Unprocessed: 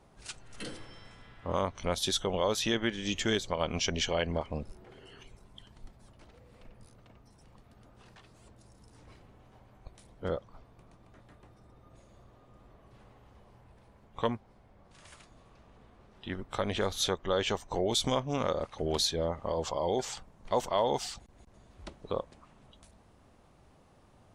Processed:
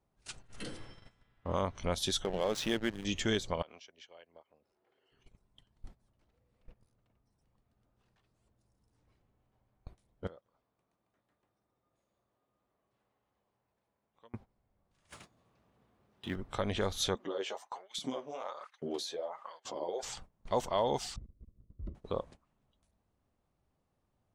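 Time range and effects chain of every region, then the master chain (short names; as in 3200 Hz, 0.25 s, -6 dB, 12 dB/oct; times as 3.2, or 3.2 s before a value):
2.24–3.05 bell 76 Hz -13 dB 0.62 oct + notch 1000 Hz, Q 11 + backlash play -31.5 dBFS
3.62–5.12 HPF 72 Hz + three-band isolator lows -19 dB, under 340 Hz, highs -13 dB, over 5800 Hz + compressor, threshold -47 dBFS
10.27–14.34 HPF 360 Hz 6 dB/oct + compressor 5:1, threshold -49 dBFS + echo 0.188 s -14 dB
15.09–16.36 G.711 law mismatch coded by mu + HPF 100 Hz
17.15–20.03 compressor 10:1, threshold -30 dBFS + LFO high-pass saw up 1.2 Hz 210–2000 Hz + flange 1.3 Hz, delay 3.5 ms, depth 9.8 ms, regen 0%
21.16–21.95 running mean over 54 samples + low shelf 230 Hz +8.5 dB
whole clip: gate -48 dBFS, range -17 dB; low shelf 230 Hz +3.5 dB; gain -3 dB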